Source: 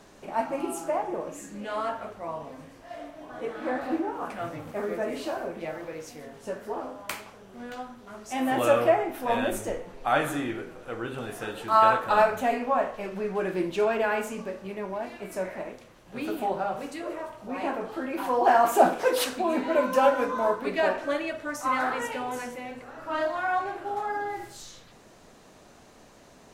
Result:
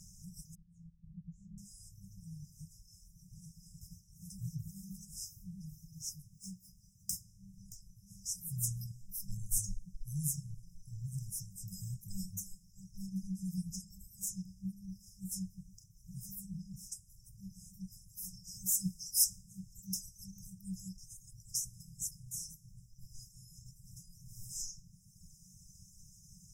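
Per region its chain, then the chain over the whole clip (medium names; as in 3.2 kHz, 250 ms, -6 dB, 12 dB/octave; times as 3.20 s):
0.55–1.58 s: low-pass 1 kHz + compression 2:1, threshold -32 dBFS
6.34–7.13 s: median filter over 3 samples + bass shelf 140 Hz -6.5 dB
whole clip: reverb removal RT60 1.5 s; FFT band-reject 200–5000 Hz; peaking EQ 230 Hz -3 dB 1.7 oct; trim +6.5 dB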